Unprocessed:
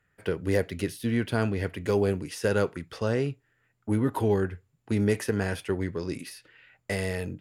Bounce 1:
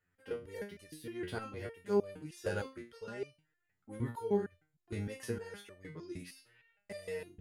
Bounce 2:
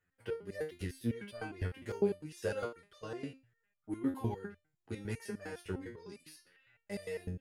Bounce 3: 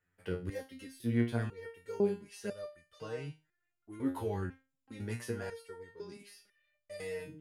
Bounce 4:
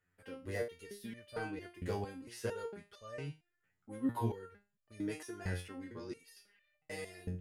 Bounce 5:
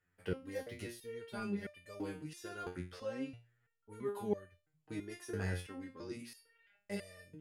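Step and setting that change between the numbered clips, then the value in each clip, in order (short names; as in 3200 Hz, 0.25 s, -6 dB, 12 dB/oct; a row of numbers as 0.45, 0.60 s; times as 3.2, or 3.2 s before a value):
stepped resonator, rate: 6.5, 9.9, 2, 4.4, 3 Hz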